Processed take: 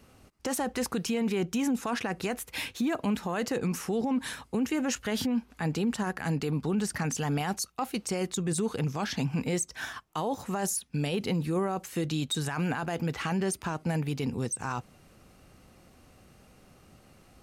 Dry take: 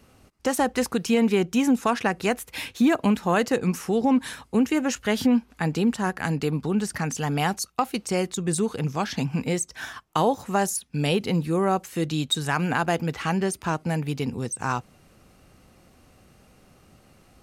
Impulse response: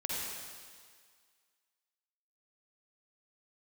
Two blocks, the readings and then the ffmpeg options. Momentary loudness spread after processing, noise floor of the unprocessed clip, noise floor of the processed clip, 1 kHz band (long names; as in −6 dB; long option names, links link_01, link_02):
4 LU, −57 dBFS, −59 dBFS, −8.0 dB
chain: -af "alimiter=limit=-20dB:level=0:latency=1:release=12,volume=-1.5dB"